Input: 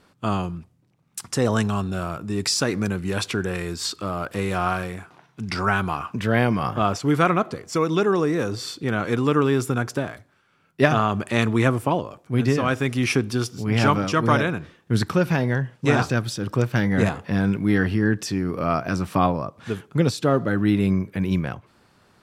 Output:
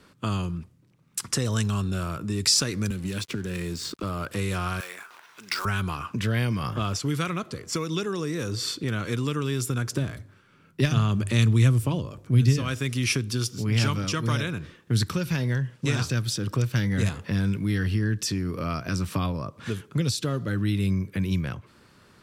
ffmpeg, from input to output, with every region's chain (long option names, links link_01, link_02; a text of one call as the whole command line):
ffmpeg -i in.wav -filter_complex "[0:a]asettb=1/sr,asplit=3[link_01][link_02][link_03];[link_01]atrim=end=2.904[link_04];[link_02]atrim=start=2.9:end=4.03,asetpts=PTS-STARTPTS,afade=type=in:duration=0.004:curve=qsin,afade=type=out:start_time=1.126:duration=0.004:curve=qsin,equalizer=frequency=210:width=0.52:gain=11.5,acrossover=split=86|2100|7000[link_05][link_06][link_07][link_08];[link_05]acompressor=threshold=-42dB:ratio=3[link_09];[link_06]acompressor=threshold=-32dB:ratio=3[link_10];[link_07]acompressor=threshold=-37dB:ratio=3[link_11];[link_08]acompressor=threshold=-49dB:ratio=3[link_12];[link_09][link_10][link_11][link_12]amix=inputs=4:normalize=0,aeval=exprs='sgn(val(0))*max(abs(val(0))-0.00596,0)':channel_layout=same[link_13];[link_03]atrim=start=4.026[link_14];[link_04][link_13]acrossfade=duration=0.004:curve1=hsin:curve2=qsin[link_15];[link_15][link_14]acrossfade=duration=0.004:curve1=qsin:curve2=hsin,asettb=1/sr,asplit=3[link_16][link_17][link_18];[link_16]atrim=end=4.804[link_19];[link_17]atrim=start=4.8:end=5.65,asetpts=PTS-STARTPTS,afade=type=in:duration=0.004:curve=qsin,afade=type=out:start_time=0.846:duration=0.004:curve=qsin,highpass=800,acompressor=mode=upward:threshold=-43dB:ratio=2.5:attack=3.2:release=140:knee=2.83:detection=peak,acrusher=bits=3:mode=log:mix=0:aa=0.000001[link_20];[link_18]atrim=start=5.646[link_21];[link_19][link_20]acrossfade=duration=0.004:curve1=hsin:curve2=qsin[link_22];[link_22][link_21]acrossfade=duration=0.004:curve1=qsin:curve2=hsin,asettb=1/sr,asplit=3[link_23][link_24][link_25];[link_23]atrim=end=9.924[link_26];[link_24]atrim=start=9.92:end=12.63,asetpts=PTS-STARTPTS,afade=type=in:duration=0.004:curve=qsin,afade=type=out:start_time=2.706:duration=0.004:curve=qsin,lowshelf=frequency=440:gain=8,bandreject=frequency=50:width_type=h:width=6,bandreject=frequency=100:width_type=h:width=6,bandreject=frequency=150:width_type=h:width=6[link_27];[link_25]atrim=start=12.626[link_28];[link_26][link_27]acrossfade=duration=0.004:curve1=hsin:curve2=qsin[link_29];[link_29][link_28]acrossfade=duration=0.004:curve1=qsin:curve2=hsin,equalizer=frequency=750:width_type=o:width=0.52:gain=-8,acrossover=split=120|3000[link_30][link_31][link_32];[link_31]acompressor=threshold=-33dB:ratio=4[link_33];[link_30][link_33][link_32]amix=inputs=3:normalize=0,volume=3dB" out.wav